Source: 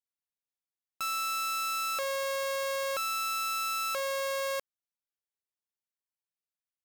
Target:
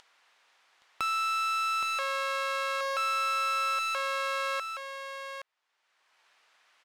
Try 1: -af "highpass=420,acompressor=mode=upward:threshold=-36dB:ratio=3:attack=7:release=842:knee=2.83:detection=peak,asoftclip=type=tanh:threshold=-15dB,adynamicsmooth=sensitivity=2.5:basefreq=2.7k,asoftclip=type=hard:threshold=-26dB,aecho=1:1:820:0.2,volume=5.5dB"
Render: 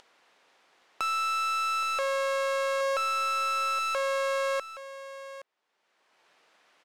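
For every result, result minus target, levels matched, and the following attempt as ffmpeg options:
500 Hz band +6.0 dB; echo-to-direct -6.5 dB
-af "highpass=940,acompressor=mode=upward:threshold=-36dB:ratio=3:attack=7:release=842:knee=2.83:detection=peak,asoftclip=type=tanh:threshold=-15dB,adynamicsmooth=sensitivity=2.5:basefreq=2.7k,asoftclip=type=hard:threshold=-26dB,aecho=1:1:820:0.2,volume=5.5dB"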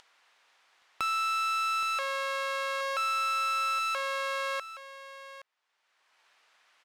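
echo-to-direct -6.5 dB
-af "highpass=940,acompressor=mode=upward:threshold=-36dB:ratio=3:attack=7:release=842:knee=2.83:detection=peak,asoftclip=type=tanh:threshold=-15dB,adynamicsmooth=sensitivity=2.5:basefreq=2.7k,asoftclip=type=hard:threshold=-26dB,aecho=1:1:820:0.422,volume=5.5dB"

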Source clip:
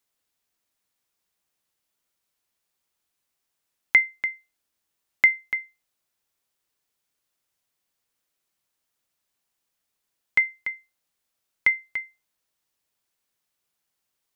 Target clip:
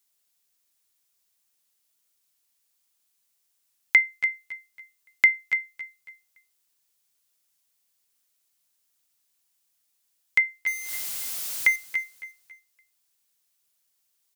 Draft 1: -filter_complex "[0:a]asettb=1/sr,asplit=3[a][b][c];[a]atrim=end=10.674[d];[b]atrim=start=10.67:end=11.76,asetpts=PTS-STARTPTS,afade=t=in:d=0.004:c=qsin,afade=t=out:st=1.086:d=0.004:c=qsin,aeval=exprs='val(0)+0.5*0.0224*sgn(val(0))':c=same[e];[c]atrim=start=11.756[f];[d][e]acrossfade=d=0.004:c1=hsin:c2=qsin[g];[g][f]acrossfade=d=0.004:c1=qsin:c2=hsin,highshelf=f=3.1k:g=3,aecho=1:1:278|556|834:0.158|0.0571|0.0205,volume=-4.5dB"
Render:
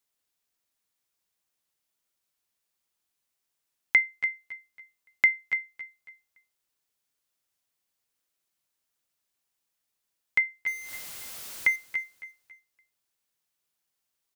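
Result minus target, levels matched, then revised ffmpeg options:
8000 Hz band -5.5 dB
-filter_complex "[0:a]asettb=1/sr,asplit=3[a][b][c];[a]atrim=end=10.674[d];[b]atrim=start=10.67:end=11.76,asetpts=PTS-STARTPTS,afade=t=in:d=0.004:c=qsin,afade=t=out:st=1.086:d=0.004:c=qsin,aeval=exprs='val(0)+0.5*0.0224*sgn(val(0))':c=same[e];[c]atrim=start=11.756[f];[d][e]acrossfade=d=0.004:c1=hsin:c2=qsin[g];[g][f]acrossfade=d=0.004:c1=qsin:c2=hsin,highshelf=f=3.1k:g=13,aecho=1:1:278|556|834:0.158|0.0571|0.0205,volume=-4.5dB"

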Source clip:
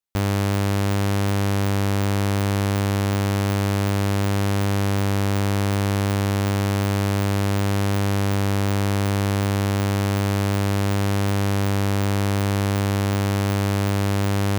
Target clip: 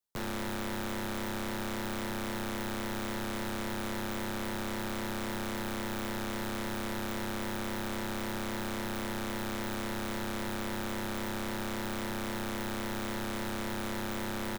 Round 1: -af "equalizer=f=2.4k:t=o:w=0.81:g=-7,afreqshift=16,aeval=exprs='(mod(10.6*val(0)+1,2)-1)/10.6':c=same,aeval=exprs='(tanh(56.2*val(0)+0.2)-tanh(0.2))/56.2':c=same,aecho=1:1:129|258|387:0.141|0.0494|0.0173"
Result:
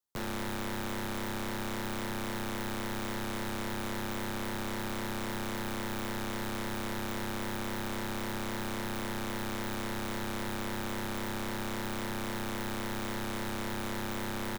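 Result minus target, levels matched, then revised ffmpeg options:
echo 45 ms late
-af "equalizer=f=2.4k:t=o:w=0.81:g=-7,afreqshift=16,aeval=exprs='(mod(10.6*val(0)+1,2)-1)/10.6':c=same,aeval=exprs='(tanh(56.2*val(0)+0.2)-tanh(0.2))/56.2':c=same,aecho=1:1:84|168|252:0.141|0.0494|0.0173"

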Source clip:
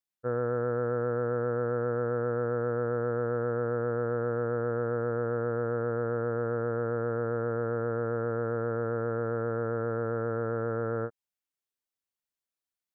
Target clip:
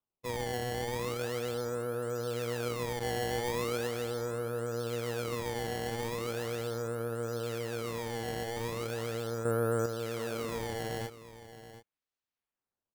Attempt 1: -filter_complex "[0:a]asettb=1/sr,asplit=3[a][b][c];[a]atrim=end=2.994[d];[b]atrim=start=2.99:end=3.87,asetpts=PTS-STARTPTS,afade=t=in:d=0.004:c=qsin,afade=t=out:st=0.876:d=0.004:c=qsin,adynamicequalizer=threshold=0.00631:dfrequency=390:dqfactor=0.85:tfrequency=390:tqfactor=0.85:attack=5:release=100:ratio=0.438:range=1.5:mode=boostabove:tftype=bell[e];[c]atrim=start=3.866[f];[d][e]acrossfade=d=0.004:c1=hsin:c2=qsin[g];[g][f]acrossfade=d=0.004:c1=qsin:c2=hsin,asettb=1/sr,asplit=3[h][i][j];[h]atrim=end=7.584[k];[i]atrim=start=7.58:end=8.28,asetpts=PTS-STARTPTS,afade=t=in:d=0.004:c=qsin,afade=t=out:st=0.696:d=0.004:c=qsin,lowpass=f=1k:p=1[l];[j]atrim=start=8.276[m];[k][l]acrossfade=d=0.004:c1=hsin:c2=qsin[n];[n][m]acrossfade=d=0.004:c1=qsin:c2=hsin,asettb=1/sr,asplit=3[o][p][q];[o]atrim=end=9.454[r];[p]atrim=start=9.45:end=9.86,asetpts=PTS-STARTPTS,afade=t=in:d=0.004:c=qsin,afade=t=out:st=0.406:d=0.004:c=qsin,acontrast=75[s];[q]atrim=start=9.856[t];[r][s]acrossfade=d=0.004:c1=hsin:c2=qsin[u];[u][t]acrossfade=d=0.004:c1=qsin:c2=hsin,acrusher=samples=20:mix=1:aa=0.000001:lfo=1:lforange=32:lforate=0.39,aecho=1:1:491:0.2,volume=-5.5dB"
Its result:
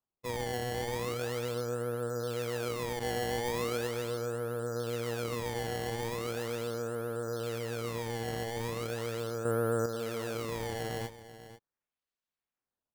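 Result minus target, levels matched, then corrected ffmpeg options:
echo 0.236 s early
-filter_complex "[0:a]asettb=1/sr,asplit=3[a][b][c];[a]atrim=end=2.994[d];[b]atrim=start=2.99:end=3.87,asetpts=PTS-STARTPTS,afade=t=in:d=0.004:c=qsin,afade=t=out:st=0.876:d=0.004:c=qsin,adynamicequalizer=threshold=0.00631:dfrequency=390:dqfactor=0.85:tfrequency=390:tqfactor=0.85:attack=5:release=100:ratio=0.438:range=1.5:mode=boostabove:tftype=bell[e];[c]atrim=start=3.866[f];[d][e]acrossfade=d=0.004:c1=hsin:c2=qsin[g];[g][f]acrossfade=d=0.004:c1=qsin:c2=hsin,asettb=1/sr,asplit=3[h][i][j];[h]atrim=end=7.584[k];[i]atrim=start=7.58:end=8.28,asetpts=PTS-STARTPTS,afade=t=in:d=0.004:c=qsin,afade=t=out:st=0.696:d=0.004:c=qsin,lowpass=f=1k:p=1[l];[j]atrim=start=8.276[m];[k][l]acrossfade=d=0.004:c1=hsin:c2=qsin[n];[n][m]acrossfade=d=0.004:c1=qsin:c2=hsin,asettb=1/sr,asplit=3[o][p][q];[o]atrim=end=9.454[r];[p]atrim=start=9.45:end=9.86,asetpts=PTS-STARTPTS,afade=t=in:d=0.004:c=qsin,afade=t=out:st=0.406:d=0.004:c=qsin,acontrast=75[s];[q]atrim=start=9.856[t];[r][s]acrossfade=d=0.004:c1=hsin:c2=qsin[u];[u][t]acrossfade=d=0.004:c1=qsin:c2=hsin,acrusher=samples=20:mix=1:aa=0.000001:lfo=1:lforange=32:lforate=0.39,aecho=1:1:727:0.2,volume=-5.5dB"

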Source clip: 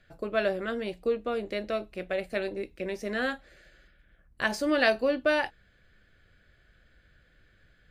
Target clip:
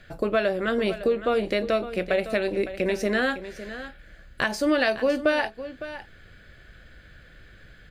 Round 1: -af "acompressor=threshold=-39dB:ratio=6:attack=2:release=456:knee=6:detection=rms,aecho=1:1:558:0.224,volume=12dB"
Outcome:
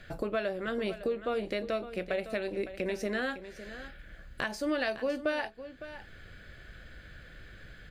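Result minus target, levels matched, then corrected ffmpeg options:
compressor: peak gain reduction +9 dB
-af "acompressor=threshold=-28.5dB:ratio=6:attack=2:release=456:knee=6:detection=rms,aecho=1:1:558:0.224,volume=12dB"

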